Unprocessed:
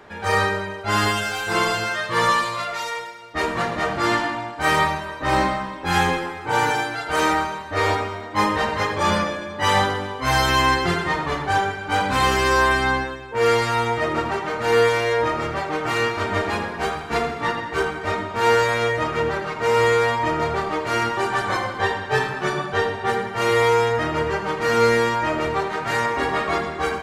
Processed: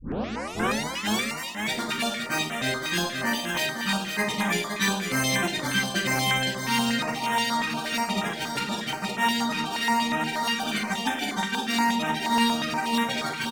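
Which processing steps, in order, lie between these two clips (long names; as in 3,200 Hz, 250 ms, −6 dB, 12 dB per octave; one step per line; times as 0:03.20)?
turntable start at the beginning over 2.44 s
parametric band 110 Hz +13 dB 0.31 octaves
repeating echo 1,031 ms, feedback 33%, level −6 dB
wrong playback speed 7.5 ips tape played at 15 ips
notch on a step sequencer 8.4 Hz 680–4,500 Hz
level −5 dB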